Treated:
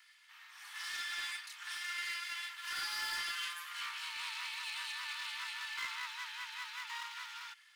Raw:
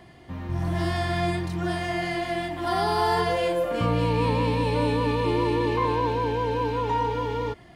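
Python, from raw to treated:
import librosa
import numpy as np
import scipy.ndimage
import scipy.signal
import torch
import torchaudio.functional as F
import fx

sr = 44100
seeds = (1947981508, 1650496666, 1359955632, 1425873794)

y = fx.lower_of_two(x, sr, delay_ms=2.3)
y = scipy.signal.sosfilt(scipy.signal.bessel(8, 2200.0, 'highpass', norm='mag', fs=sr, output='sos'), y)
y = np.clip(y, -10.0 ** (-31.0 / 20.0), 10.0 ** (-31.0 / 20.0))
y = F.gain(torch.from_numpy(y), -2.0).numpy()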